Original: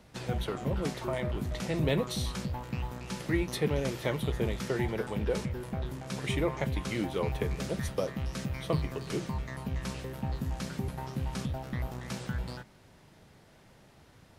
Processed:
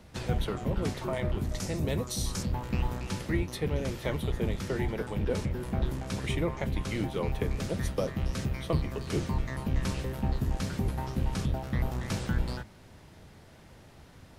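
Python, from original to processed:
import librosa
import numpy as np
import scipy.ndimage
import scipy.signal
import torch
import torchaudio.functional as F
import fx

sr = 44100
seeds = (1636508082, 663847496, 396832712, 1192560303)

y = fx.octave_divider(x, sr, octaves=1, level_db=0.0)
y = fx.high_shelf_res(y, sr, hz=4400.0, db=7.0, q=1.5, at=(1.49, 2.43))
y = fx.rider(y, sr, range_db=10, speed_s=0.5)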